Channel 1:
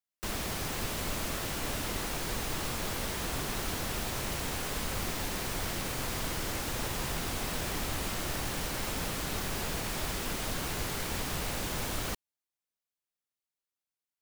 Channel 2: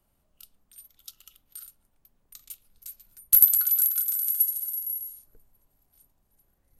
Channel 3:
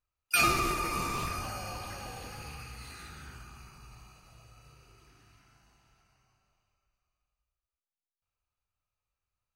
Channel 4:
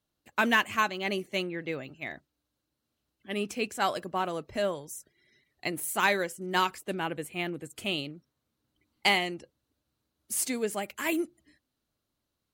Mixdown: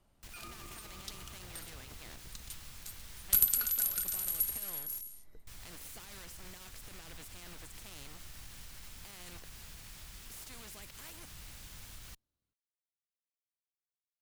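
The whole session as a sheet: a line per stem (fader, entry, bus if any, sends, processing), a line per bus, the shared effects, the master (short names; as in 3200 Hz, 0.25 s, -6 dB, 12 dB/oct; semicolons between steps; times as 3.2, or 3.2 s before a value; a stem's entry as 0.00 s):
-7.5 dB, 0.00 s, muted 4.57–5.47, bus A, no send, passive tone stack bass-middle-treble 5-5-5
+2.0 dB, 0.00 s, no bus, no send, LPF 7300 Hz 12 dB/oct
-18.5 dB, 0.00 s, bus A, no send, level-crossing sampler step -31.5 dBFS
-17.5 dB, 0.00 s, bus A, no send, sample leveller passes 3; spectral compressor 4:1
bus A: 0.0 dB, low shelf 150 Hz +10 dB; limiter -38.5 dBFS, peak gain reduction 11 dB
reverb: off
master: dry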